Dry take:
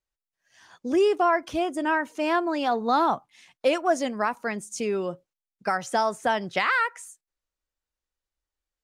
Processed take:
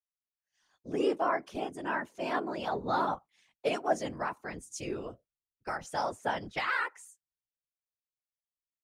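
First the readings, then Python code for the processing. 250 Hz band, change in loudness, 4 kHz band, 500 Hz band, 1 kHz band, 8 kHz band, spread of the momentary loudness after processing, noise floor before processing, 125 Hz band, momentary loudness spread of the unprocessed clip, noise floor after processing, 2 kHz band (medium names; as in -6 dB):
-9.0 dB, -8.0 dB, -8.0 dB, -8.5 dB, -8.0 dB, -8.0 dB, 10 LU, under -85 dBFS, -2.0 dB, 10 LU, under -85 dBFS, -7.5 dB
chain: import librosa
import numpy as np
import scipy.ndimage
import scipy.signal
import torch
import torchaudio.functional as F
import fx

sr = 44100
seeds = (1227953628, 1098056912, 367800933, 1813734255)

y = fx.whisperise(x, sr, seeds[0])
y = fx.band_widen(y, sr, depth_pct=40)
y = y * 10.0 ** (-8.5 / 20.0)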